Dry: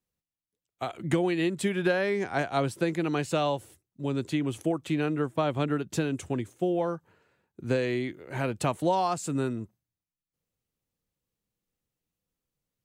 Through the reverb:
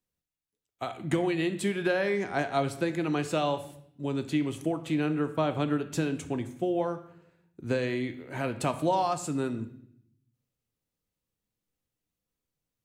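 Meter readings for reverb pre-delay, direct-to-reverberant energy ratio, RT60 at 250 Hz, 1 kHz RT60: 3 ms, 8.5 dB, 1.0 s, 0.60 s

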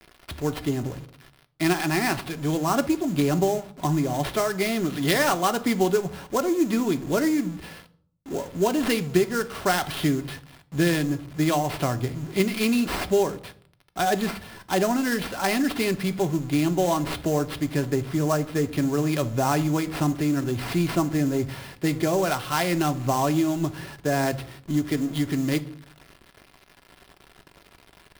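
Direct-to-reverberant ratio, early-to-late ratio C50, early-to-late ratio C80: 7.0 dB, 18.0 dB, 22.5 dB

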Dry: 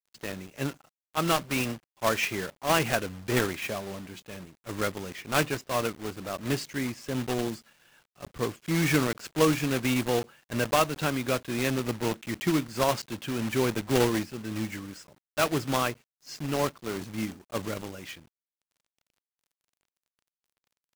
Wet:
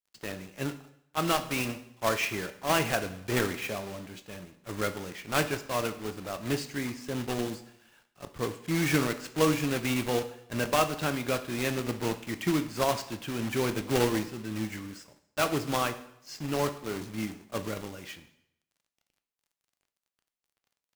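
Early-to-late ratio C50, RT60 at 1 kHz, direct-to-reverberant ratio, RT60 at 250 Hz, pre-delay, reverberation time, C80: 13.0 dB, 0.75 s, 8.5 dB, 0.75 s, 4 ms, 0.75 s, 16.0 dB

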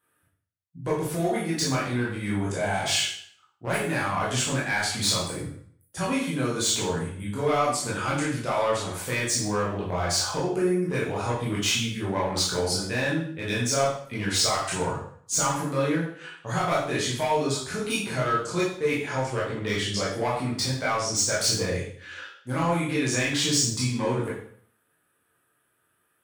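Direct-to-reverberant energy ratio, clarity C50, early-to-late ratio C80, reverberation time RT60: −7.0 dB, 3.0 dB, 7.0 dB, 0.55 s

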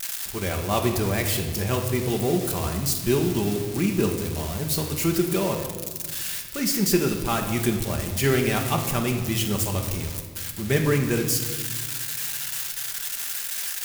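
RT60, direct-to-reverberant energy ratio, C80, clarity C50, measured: 1.5 s, 2.5 dB, 8.5 dB, 7.0 dB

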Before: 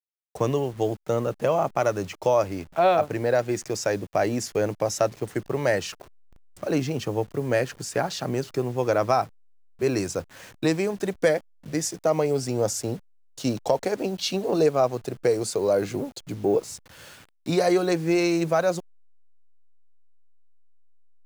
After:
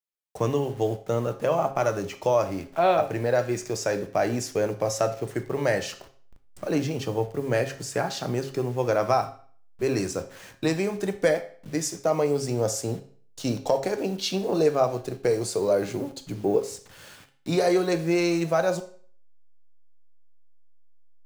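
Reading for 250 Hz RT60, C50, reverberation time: 0.50 s, 12.5 dB, 0.45 s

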